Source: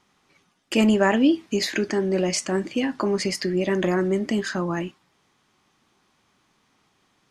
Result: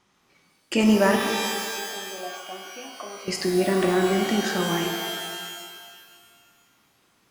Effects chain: 1.16–3.28 vowel filter a; shimmer reverb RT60 1.8 s, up +12 st, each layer -2 dB, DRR 3 dB; gain -1.5 dB

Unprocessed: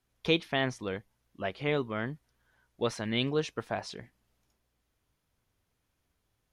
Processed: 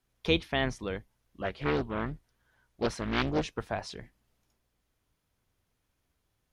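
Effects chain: octaver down 2 oct, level -5 dB; 1.42–3.59 Doppler distortion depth 0.79 ms

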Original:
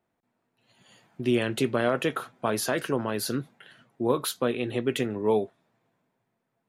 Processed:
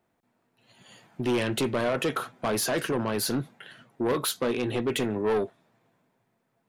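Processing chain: soft clip -25.5 dBFS, distortion -8 dB; gain +4.5 dB

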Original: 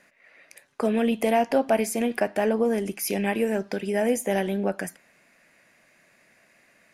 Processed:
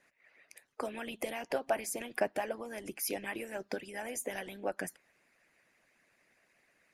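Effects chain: harmonic-percussive split harmonic -17 dB; gain -5.5 dB

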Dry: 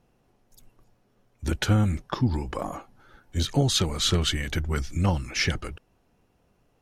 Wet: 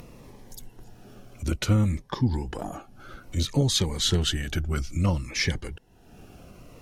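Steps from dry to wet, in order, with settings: upward compressor, threshold -29 dBFS; cascading phaser falling 0.59 Hz

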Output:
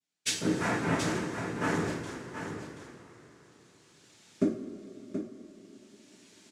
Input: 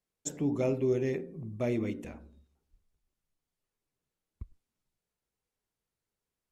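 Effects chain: recorder AGC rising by 13 dB/s; tone controls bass -1 dB, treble +10 dB; in parallel at -11 dB: bit-crush 6-bit; on the sum: noise vocoder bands 3; on a send: echo 0.728 s -8.5 dB; on the sum: two-slope reverb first 0.42 s, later 4.3 s, from -18 dB, DRR -6 dB; gain -8.5 dB

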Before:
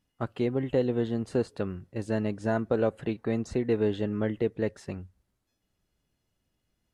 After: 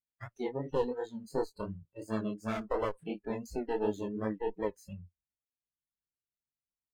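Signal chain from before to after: minimum comb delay 0.45 ms; spectral noise reduction 26 dB; chorus 2.8 Hz, delay 18.5 ms, depth 6.4 ms

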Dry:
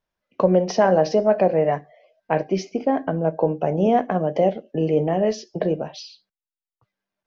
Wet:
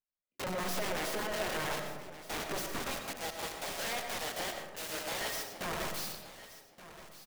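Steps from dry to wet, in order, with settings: 2.9–5.61 Bessel high-pass 1100 Hz, order 6; sample leveller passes 2; compressor 16:1, threshold -26 dBFS, peak gain reduction 17.5 dB; sample leveller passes 5; level quantiser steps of 14 dB; wrapped overs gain 26.5 dB; feedback echo 1.174 s, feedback 15%, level -15 dB; digital reverb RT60 1.2 s, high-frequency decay 0.3×, pre-delay 55 ms, DRR 4.5 dB; gain -8 dB

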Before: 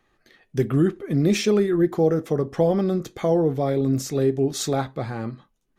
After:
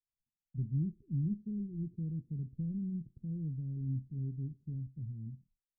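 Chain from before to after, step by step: inverse Chebyshev low-pass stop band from 820 Hz, stop band 70 dB; expander -55 dBFS; gain -8.5 dB

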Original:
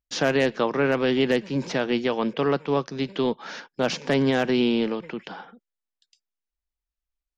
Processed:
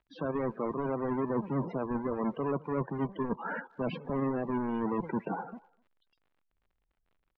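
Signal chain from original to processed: half-waves squared off; dynamic EQ 1000 Hz, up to +6 dB, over -43 dBFS, Q 6.3; in parallel at -2 dB: level quantiser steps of 17 dB; on the sum: limiter -10 dBFS, peak gain reduction 6.5 dB; reverse; compressor 12:1, threshold -27 dBFS, peak gain reduction 14.5 dB; reverse; loudest bins only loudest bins 32; crackle 69/s -52 dBFS; air absorption 490 m; speakerphone echo 0.25 s, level -25 dB; core saturation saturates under 110 Hz

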